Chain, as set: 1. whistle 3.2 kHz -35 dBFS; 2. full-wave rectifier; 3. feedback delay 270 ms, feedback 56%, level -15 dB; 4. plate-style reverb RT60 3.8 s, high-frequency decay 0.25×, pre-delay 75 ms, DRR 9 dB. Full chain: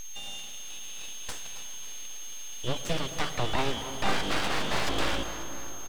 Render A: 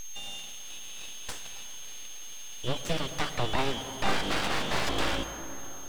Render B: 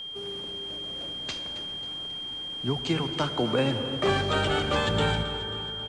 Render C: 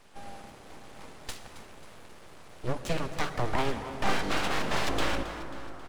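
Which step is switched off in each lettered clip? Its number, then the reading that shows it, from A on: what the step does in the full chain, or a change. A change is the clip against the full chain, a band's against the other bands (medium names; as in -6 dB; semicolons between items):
3, echo-to-direct -7.5 dB to -9.0 dB; 2, 8 kHz band -17.5 dB; 1, 8 kHz band -9.0 dB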